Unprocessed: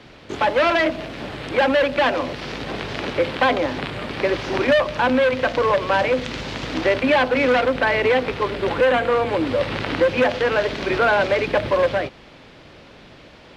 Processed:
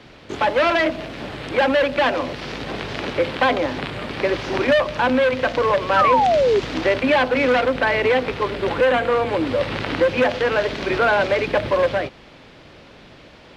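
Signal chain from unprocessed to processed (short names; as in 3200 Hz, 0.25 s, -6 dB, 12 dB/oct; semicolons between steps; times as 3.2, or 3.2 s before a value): painted sound fall, 5.96–6.6, 380–1400 Hz -16 dBFS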